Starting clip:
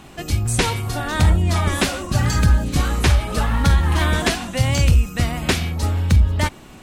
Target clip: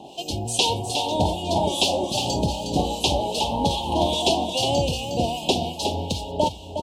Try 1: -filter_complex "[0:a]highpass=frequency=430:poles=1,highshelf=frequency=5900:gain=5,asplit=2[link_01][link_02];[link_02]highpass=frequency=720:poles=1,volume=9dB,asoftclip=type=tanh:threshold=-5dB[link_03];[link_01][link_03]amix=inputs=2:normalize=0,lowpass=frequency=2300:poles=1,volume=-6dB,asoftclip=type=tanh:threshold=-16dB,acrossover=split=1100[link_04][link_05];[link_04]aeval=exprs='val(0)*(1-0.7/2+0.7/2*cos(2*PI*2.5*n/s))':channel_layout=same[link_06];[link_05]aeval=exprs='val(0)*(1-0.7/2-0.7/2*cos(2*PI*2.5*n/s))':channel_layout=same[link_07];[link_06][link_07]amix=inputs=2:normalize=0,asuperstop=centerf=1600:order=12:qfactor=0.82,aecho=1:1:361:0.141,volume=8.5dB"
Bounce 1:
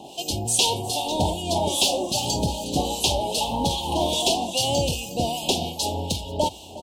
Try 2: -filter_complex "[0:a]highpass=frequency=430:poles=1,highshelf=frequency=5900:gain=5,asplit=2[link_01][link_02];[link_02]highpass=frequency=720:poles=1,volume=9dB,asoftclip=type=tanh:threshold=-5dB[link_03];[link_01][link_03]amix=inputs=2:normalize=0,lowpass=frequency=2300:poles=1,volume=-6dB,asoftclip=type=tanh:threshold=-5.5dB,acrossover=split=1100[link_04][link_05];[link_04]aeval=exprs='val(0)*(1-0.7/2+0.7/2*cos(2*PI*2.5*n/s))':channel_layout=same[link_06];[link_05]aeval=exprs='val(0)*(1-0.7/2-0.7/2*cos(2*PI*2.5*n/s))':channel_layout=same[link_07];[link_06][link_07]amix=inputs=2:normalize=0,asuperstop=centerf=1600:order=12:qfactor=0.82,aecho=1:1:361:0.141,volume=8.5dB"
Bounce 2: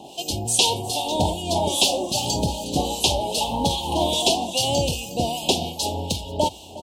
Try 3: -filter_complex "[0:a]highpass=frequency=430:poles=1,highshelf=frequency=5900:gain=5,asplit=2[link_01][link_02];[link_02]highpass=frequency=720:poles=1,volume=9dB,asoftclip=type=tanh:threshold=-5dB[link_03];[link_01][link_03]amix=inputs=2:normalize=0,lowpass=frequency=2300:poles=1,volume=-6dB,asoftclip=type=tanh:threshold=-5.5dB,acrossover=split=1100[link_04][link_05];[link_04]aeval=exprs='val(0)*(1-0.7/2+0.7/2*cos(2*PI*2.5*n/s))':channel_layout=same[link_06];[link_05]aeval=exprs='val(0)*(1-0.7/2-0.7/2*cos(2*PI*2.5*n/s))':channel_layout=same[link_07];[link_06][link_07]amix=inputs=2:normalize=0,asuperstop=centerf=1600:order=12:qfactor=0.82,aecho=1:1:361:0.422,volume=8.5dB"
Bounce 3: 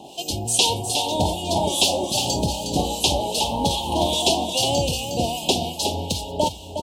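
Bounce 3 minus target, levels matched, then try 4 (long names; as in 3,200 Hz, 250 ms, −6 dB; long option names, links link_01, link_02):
8,000 Hz band +4.5 dB
-filter_complex "[0:a]highpass=frequency=430:poles=1,highshelf=frequency=5900:gain=-6,asplit=2[link_01][link_02];[link_02]highpass=frequency=720:poles=1,volume=9dB,asoftclip=type=tanh:threshold=-5dB[link_03];[link_01][link_03]amix=inputs=2:normalize=0,lowpass=frequency=2300:poles=1,volume=-6dB,asoftclip=type=tanh:threshold=-5.5dB,acrossover=split=1100[link_04][link_05];[link_04]aeval=exprs='val(0)*(1-0.7/2+0.7/2*cos(2*PI*2.5*n/s))':channel_layout=same[link_06];[link_05]aeval=exprs='val(0)*(1-0.7/2-0.7/2*cos(2*PI*2.5*n/s))':channel_layout=same[link_07];[link_06][link_07]amix=inputs=2:normalize=0,asuperstop=centerf=1600:order=12:qfactor=0.82,aecho=1:1:361:0.422,volume=8.5dB"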